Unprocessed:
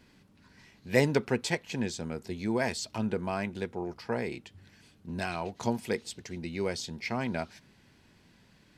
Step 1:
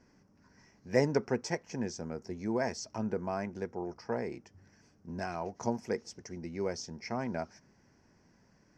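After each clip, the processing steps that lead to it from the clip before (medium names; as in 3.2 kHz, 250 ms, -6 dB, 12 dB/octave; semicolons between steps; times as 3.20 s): FFT filter 110 Hz 0 dB, 680 Hz +4 dB, 1.9 kHz -1 dB, 3.8 kHz -18 dB, 5.6 kHz +8 dB, 9 kHz -15 dB; trim -5 dB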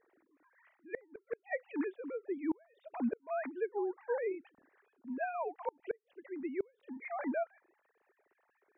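formants replaced by sine waves; inverted gate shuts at -25 dBFS, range -34 dB; trim +1 dB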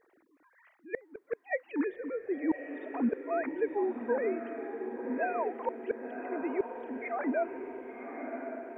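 echo that smears into a reverb 1081 ms, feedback 56%, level -7 dB; trim +4.5 dB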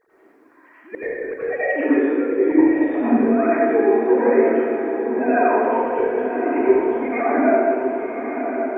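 reverberation RT60 2.1 s, pre-delay 76 ms, DRR -12 dB; trim +2.5 dB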